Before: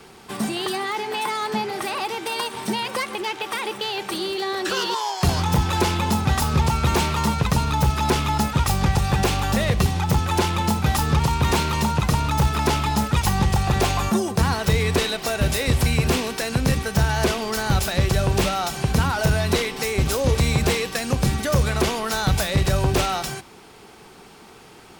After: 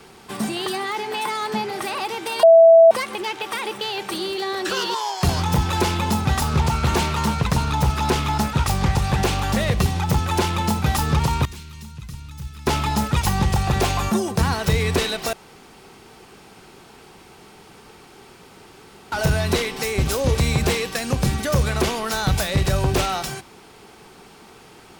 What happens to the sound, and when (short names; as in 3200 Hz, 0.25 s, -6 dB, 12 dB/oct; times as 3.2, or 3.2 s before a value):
2.43–2.91 bleep 660 Hz -6 dBFS
6.4–9.6 Doppler distortion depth 0.19 ms
11.45–12.67 passive tone stack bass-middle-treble 6-0-2
15.33–19.12 room tone